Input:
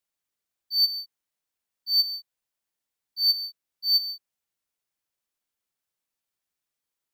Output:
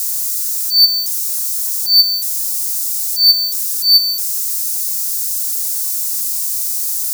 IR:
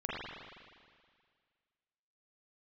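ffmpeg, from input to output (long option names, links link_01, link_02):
-af "aeval=exprs='val(0)+0.5*0.0282*sgn(val(0))':channel_layout=same,aexciter=amount=9.6:drive=6.8:freq=4400,volume=-4dB"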